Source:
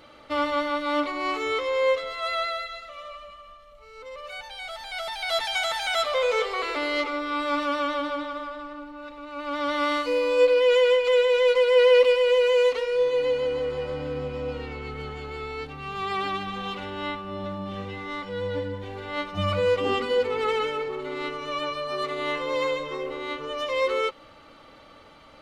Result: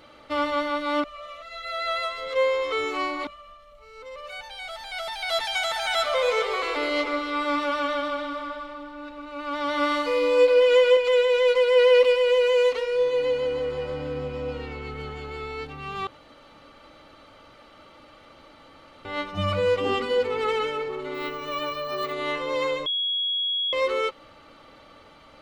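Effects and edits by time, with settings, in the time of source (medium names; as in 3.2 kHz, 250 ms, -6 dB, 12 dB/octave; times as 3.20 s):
1.04–3.27 s: reverse
5.62–10.97 s: echo whose repeats swap between lows and highs 139 ms, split 1.9 kHz, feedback 67%, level -6.5 dB
16.07–19.05 s: room tone
21.14–22.13 s: careless resampling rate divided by 2×, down filtered, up hold
22.86–23.73 s: bleep 3.33 kHz -23 dBFS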